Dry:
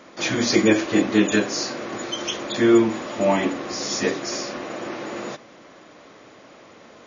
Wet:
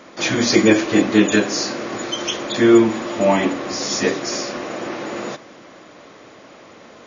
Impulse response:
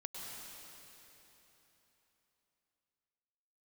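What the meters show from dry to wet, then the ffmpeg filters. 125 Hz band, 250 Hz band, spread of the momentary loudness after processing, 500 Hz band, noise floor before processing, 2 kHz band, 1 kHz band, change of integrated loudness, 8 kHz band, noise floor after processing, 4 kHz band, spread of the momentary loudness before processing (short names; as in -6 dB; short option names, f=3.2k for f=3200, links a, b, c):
+3.5 dB, +4.0 dB, 14 LU, +4.0 dB, -48 dBFS, +3.5 dB, +3.5 dB, +4.0 dB, n/a, -44 dBFS, +3.5 dB, 14 LU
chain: -filter_complex "[0:a]asplit=2[a][b];[1:a]atrim=start_sample=2205,asetrate=48510,aresample=44100[c];[b][c]afir=irnorm=-1:irlink=0,volume=-15.5dB[d];[a][d]amix=inputs=2:normalize=0,volume=3dB"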